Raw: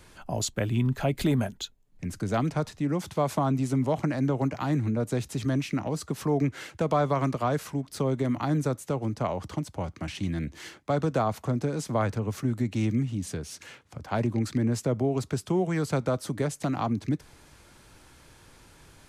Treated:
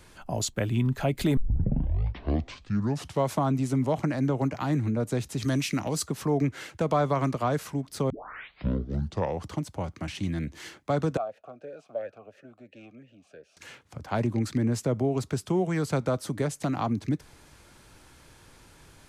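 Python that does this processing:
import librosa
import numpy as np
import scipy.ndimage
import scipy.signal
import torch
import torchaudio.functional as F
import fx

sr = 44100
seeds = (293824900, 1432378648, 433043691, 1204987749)

y = fx.high_shelf(x, sr, hz=2800.0, db=10.5, at=(5.42, 6.08))
y = fx.vowel_sweep(y, sr, vowels='a-e', hz=2.9, at=(11.17, 13.57))
y = fx.edit(y, sr, fx.tape_start(start_s=1.37, length_s=1.97),
    fx.tape_start(start_s=8.1, length_s=1.38), tone=tone)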